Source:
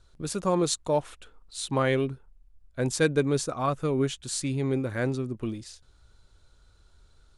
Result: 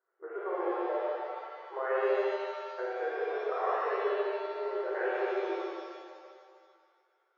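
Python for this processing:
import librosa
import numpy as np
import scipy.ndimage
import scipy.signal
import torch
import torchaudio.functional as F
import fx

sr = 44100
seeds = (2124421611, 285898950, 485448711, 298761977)

p1 = fx.law_mismatch(x, sr, coded='A')
p2 = fx.level_steps(p1, sr, step_db=18)
p3 = fx.brickwall_bandpass(p2, sr, low_hz=340.0, high_hz=2100.0)
p4 = p3 + fx.echo_single(p3, sr, ms=147, db=-5.0, dry=0)
y = fx.rev_shimmer(p4, sr, seeds[0], rt60_s=1.9, semitones=7, shimmer_db=-8, drr_db=-6.5)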